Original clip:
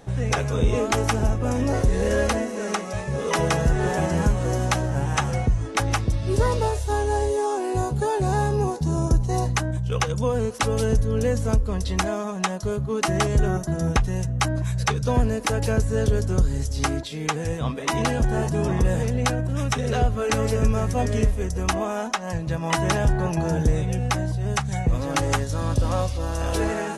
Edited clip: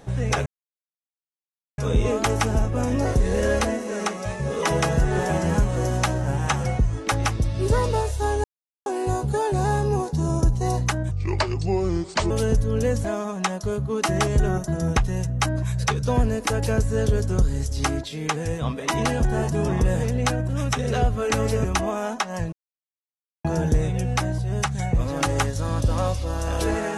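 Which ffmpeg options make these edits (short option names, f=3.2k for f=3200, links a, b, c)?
-filter_complex "[0:a]asplit=10[a][b][c][d][e][f][g][h][i][j];[a]atrim=end=0.46,asetpts=PTS-STARTPTS,afade=t=out:st=0.456:d=0.004:c=hsin,apad=pad_dur=1.32[k];[b]atrim=start=0.46:end=7.12,asetpts=PTS-STARTPTS,afade=t=in:d=0.004:c=hsin,afade=t=out:st=6.656:d=0.004:c=hsin[l];[c]atrim=start=7.12:end=7.54,asetpts=PTS-STARTPTS,volume=0[m];[d]atrim=start=7.54:end=9.794,asetpts=PTS-STARTPTS,afade=t=in:d=0.004:c=hsin[n];[e]atrim=start=9.79:end=10.71,asetpts=PTS-STARTPTS,asetrate=33957,aresample=44100[o];[f]atrim=start=10.706:end=11.452[p];[g]atrim=start=12.038:end=20.642[q];[h]atrim=start=21.578:end=22.46,asetpts=PTS-STARTPTS,afade=t=out:st=0.878:d=0.004:c=hsin[r];[i]atrim=start=22.46:end=23.38,asetpts=PTS-STARTPTS,volume=0[s];[j]atrim=start=23.38,asetpts=PTS-STARTPTS,afade=t=in:d=0.004:c=hsin[t];[k][l][m][n]concat=n=4:v=0:a=1[u];[u][o]acrossfade=d=0.004:c1=hsin:c2=hsin[v];[v][p]acrossfade=d=0.004:c1=hsin:c2=hsin[w];[w][q]acrossfade=d=0.004:c1=hsin:c2=hsin[x];[r][s][t]concat=n=3:v=0:a=1[y];[x][y]acrossfade=d=0.004:c1=hsin:c2=hsin"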